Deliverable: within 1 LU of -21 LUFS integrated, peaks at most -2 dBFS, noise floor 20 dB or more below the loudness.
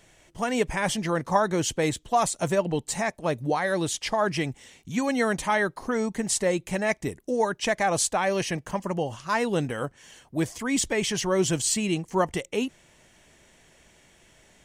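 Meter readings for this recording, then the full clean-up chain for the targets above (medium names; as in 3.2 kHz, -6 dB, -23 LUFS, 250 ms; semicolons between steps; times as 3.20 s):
loudness -26.5 LUFS; peak level -8.5 dBFS; loudness target -21.0 LUFS
-> trim +5.5 dB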